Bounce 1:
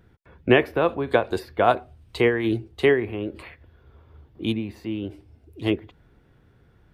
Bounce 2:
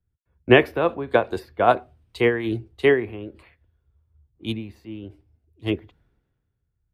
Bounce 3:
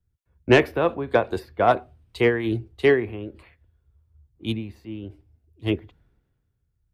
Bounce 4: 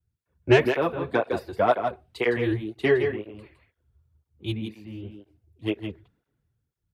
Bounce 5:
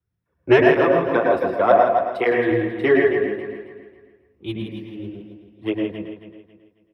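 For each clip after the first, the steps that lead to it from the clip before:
three bands expanded up and down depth 70%; trim -2 dB
bass shelf 160 Hz +3.5 dB; saturation -6 dBFS, distortion -17 dB
delay 162 ms -7.5 dB; cancelling through-zero flanger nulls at 2 Hz, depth 4.7 ms
feedback delay 272 ms, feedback 33%, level -11 dB; reverberation RT60 0.30 s, pre-delay 104 ms, DRR 1 dB; trim -5 dB

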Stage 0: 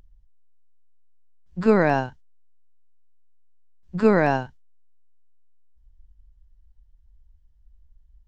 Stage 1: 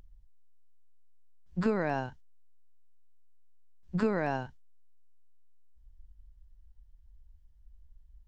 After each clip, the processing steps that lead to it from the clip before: compression 10:1, threshold -23 dBFS, peak gain reduction 12 dB; trim -1.5 dB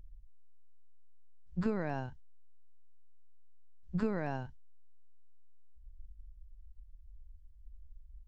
bass shelf 150 Hz +11.5 dB; trim -7.5 dB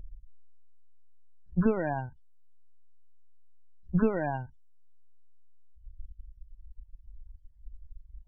loudest bins only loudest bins 32; reverb removal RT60 2 s; trim +8.5 dB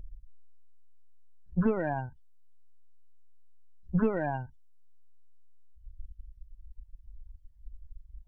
saturation -15 dBFS, distortion -20 dB

